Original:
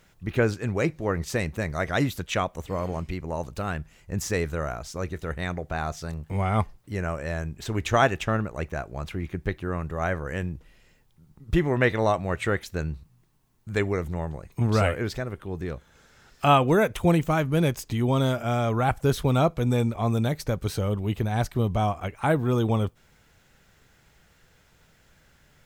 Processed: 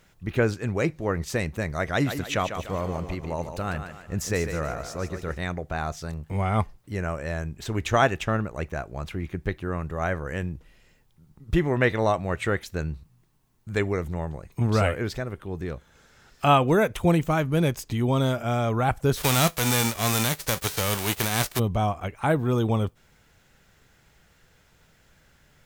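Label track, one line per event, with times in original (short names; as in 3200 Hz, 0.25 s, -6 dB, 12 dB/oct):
1.910000	5.390000	thinning echo 0.147 s, feedback 46%, high-pass 170 Hz, level -8 dB
19.160000	21.580000	spectral whitening exponent 0.3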